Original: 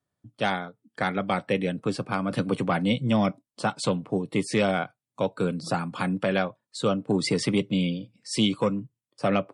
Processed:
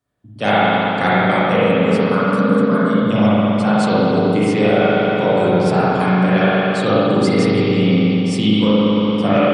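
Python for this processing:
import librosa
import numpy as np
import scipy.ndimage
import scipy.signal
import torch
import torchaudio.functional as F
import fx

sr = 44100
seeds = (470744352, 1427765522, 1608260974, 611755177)

y = fx.fixed_phaser(x, sr, hz=510.0, stages=8, at=(1.64, 3.03))
y = fx.echo_banded(y, sr, ms=224, feedback_pct=81, hz=880.0, wet_db=-16.5)
y = fx.rev_spring(y, sr, rt60_s=3.2, pass_ms=(38, 57), chirp_ms=30, drr_db=-10.0)
y = fx.rider(y, sr, range_db=10, speed_s=0.5)
y = y * 10.0 ** (1.0 / 20.0)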